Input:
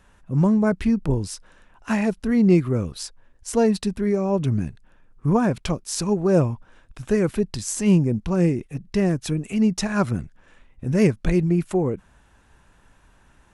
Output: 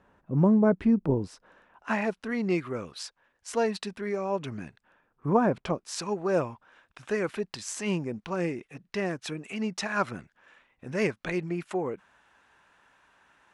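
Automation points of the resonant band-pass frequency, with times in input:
resonant band-pass, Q 0.54
0:01.16 460 Hz
0:02.36 1,800 Hz
0:04.54 1,800 Hz
0:05.63 590 Hz
0:05.99 1,700 Hz

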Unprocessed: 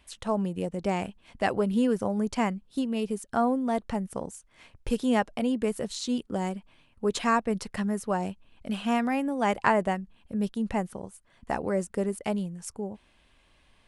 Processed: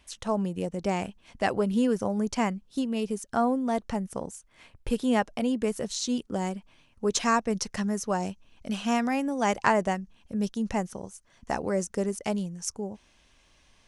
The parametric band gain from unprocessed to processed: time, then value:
parametric band 6,000 Hz 0.53 octaves
0:04.01 +7 dB
0:04.90 −2.5 dB
0:05.36 +7.5 dB
0:06.56 +7.5 dB
0:07.35 +14 dB

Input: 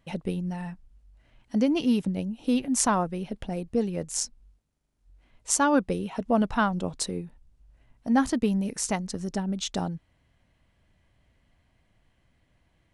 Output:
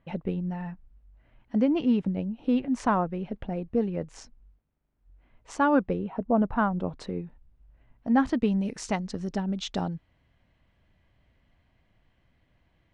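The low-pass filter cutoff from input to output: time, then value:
0:05.88 2,200 Hz
0:06.23 1,000 Hz
0:07.19 2,500 Hz
0:08.13 2,500 Hz
0:08.66 4,300 Hz

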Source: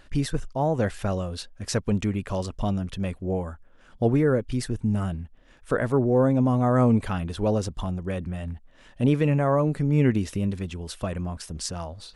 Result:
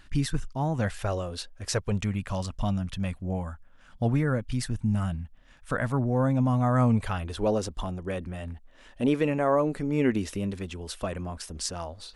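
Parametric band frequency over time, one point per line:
parametric band −12.5 dB 0.83 octaves
0:00.70 530 Hz
0:01.30 120 Hz
0:02.21 400 Hz
0:06.87 400 Hz
0:07.43 130 Hz

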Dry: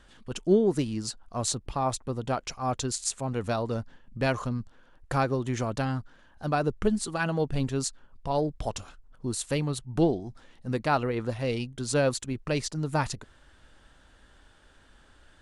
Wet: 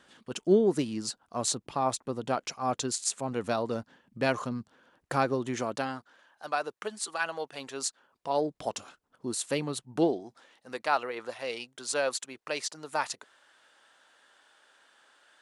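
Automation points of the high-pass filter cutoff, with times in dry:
0:05.43 190 Hz
0:06.47 720 Hz
0:07.53 720 Hz
0:08.63 240 Hz
0:09.91 240 Hz
0:10.70 610 Hz

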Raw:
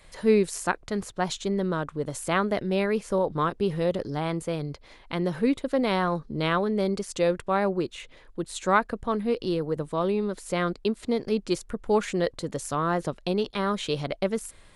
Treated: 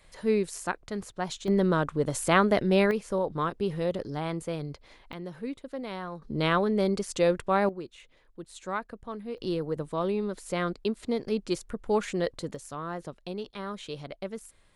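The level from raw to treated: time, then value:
−5 dB
from 0:01.48 +3 dB
from 0:02.91 −3.5 dB
from 0:05.13 −12 dB
from 0:06.22 0 dB
from 0:07.69 −11 dB
from 0:09.38 −3 dB
from 0:12.55 −10 dB

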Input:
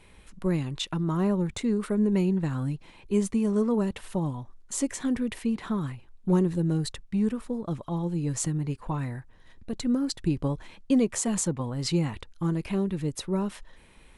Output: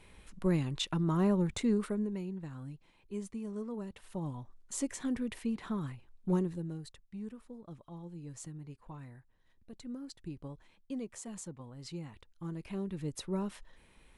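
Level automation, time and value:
0:01.77 −3 dB
0:02.19 −15 dB
0:03.90 −15 dB
0:04.37 −7 dB
0:06.34 −7 dB
0:06.83 −17 dB
0:12.08 −17 dB
0:13.18 −7 dB

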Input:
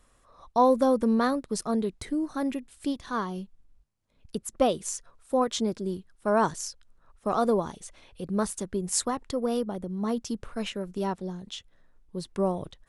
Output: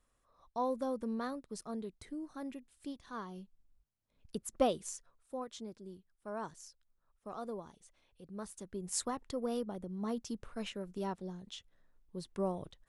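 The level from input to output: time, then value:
0:03.05 −14 dB
0:04.61 −6 dB
0:05.47 −18 dB
0:08.33 −18 dB
0:09.01 −8.5 dB

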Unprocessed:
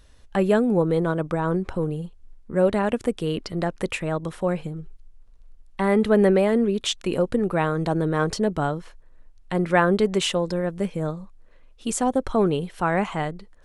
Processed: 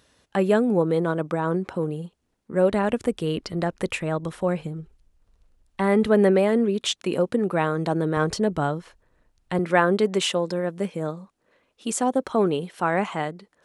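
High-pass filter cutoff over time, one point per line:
150 Hz
from 0:02.72 43 Hz
from 0:06.07 140 Hz
from 0:08.17 49 Hz
from 0:09.59 180 Hz

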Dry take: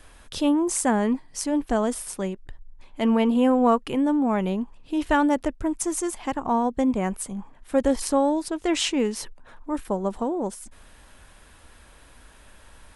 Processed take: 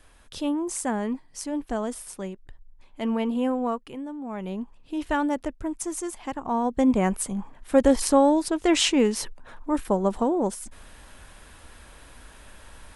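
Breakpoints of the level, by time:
0:03.47 −5.5 dB
0:04.16 −14.5 dB
0:04.60 −4.5 dB
0:06.46 −4.5 dB
0:06.92 +3 dB

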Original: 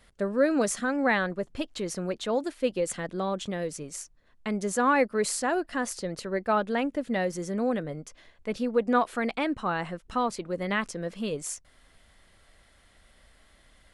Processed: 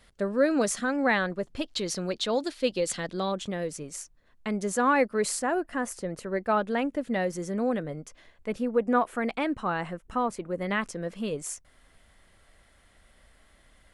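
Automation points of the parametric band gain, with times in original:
parametric band 4,300 Hz 1.1 octaves
+2 dB
from 0:01.66 +9.5 dB
from 0:03.32 −1 dB
from 0:05.39 −10 dB
from 0:06.30 −2.5 dB
from 0:08.52 −10 dB
from 0:09.28 −3.5 dB
from 0:09.93 −10.5 dB
from 0:10.61 −3.5 dB

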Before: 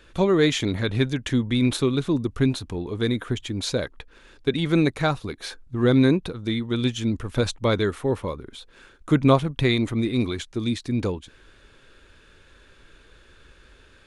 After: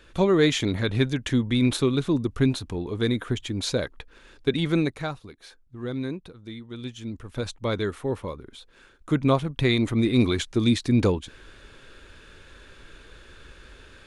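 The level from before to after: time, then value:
0:04.63 −0.5 dB
0:05.33 −13 dB
0:06.72 −13 dB
0:07.85 −4 dB
0:09.31 −4 dB
0:10.35 +4.5 dB

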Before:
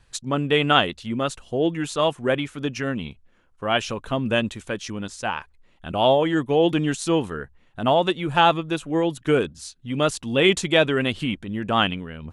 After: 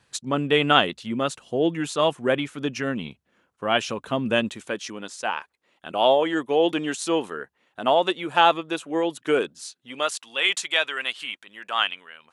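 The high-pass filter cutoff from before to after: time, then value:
0:04.38 150 Hz
0:05.02 340 Hz
0:09.74 340 Hz
0:10.20 1,100 Hz

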